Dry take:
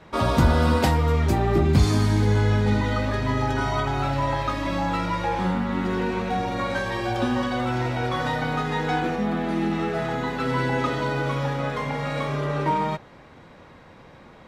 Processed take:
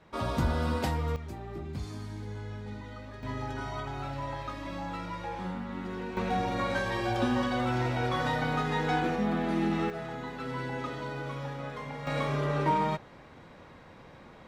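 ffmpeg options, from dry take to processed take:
-af "asetnsamples=n=441:p=0,asendcmd='1.16 volume volume -19.5dB;3.23 volume volume -12dB;6.17 volume volume -4dB;9.9 volume volume -11.5dB;12.07 volume volume -3.5dB',volume=-10dB"

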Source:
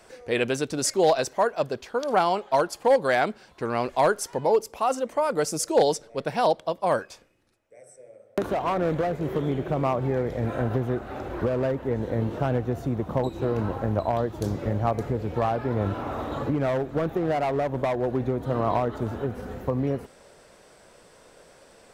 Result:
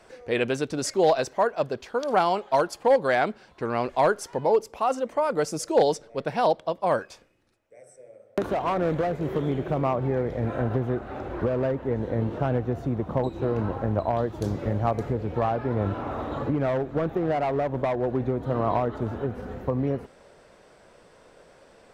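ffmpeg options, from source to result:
-af "asetnsamples=n=441:p=0,asendcmd='1.8 lowpass f 7900;2.76 lowpass f 4100;7.01 lowpass f 7300;9.78 lowpass f 3100;14.18 lowpass f 6300;15.14 lowpass f 3200',lowpass=f=4.2k:p=1"

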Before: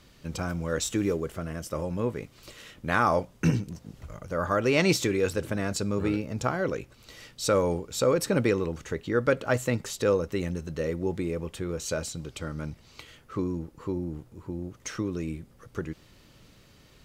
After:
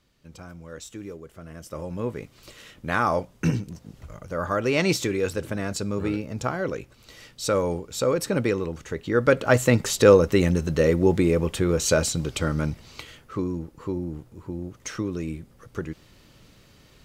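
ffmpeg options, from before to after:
-af "volume=10dB,afade=t=in:st=1.29:d=0.87:silence=0.266073,afade=t=in:st=8.91:d=1.1:silence=0.334965,afade=t=out:st=12.5:d=0.86:silence=0.398107"

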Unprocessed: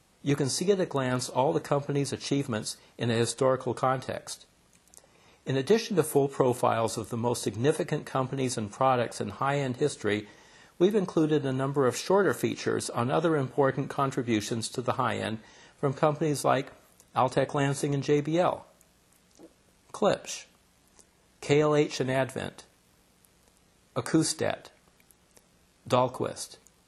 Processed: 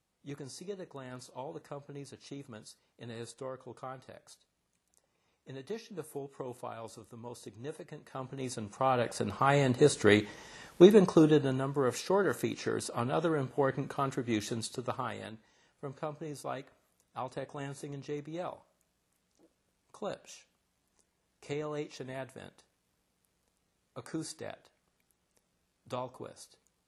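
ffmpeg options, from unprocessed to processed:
-af "volume=4.5dB,afade=t=in:st=7.97:d=0.82:silence=0.281838,afade=t=in:st=8.79:d=1.27:silence=0.298538,afade=t=out:st=10.96:d=0.69:silence=0.334965,afade=t=out:st=14.64:d=0.7:silence=0.354813"

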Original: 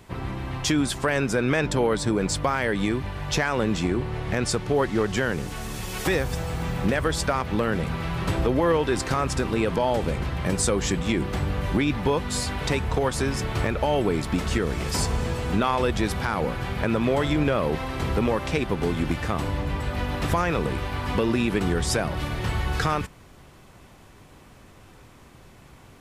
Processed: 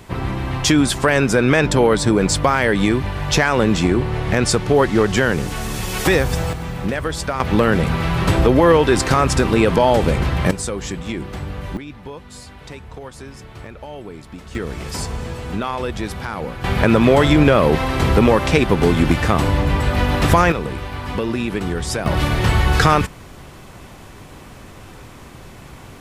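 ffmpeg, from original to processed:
-af "asetnsamples=n=441:p=0,asendcmd='6.53 volume volume 1dB;7.4 volume volume 9dB;10.51 volume volume -2dB;11.77 volume volume -11dB;14.55 volume volume -1dB;16.64 volume volume 10dB;20.52 volume volume 1dB;22.06 volume volume 10.5dB',volume=8dB"

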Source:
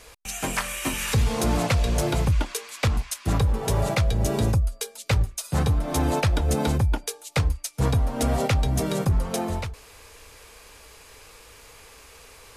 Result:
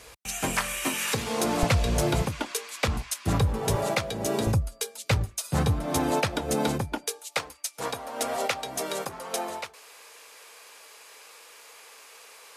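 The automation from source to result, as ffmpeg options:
-af "asetnsamples=n=441:p=0,asendcmd='0.85 highpass f 230;1.63 highpass f 60;2.22 highpass f 210;2.88 highpass f 77;3.76 highpass f 230;4.47 highpass f 87;5.98 highpass f 190;7.19 highpass f 530',highpass=51"

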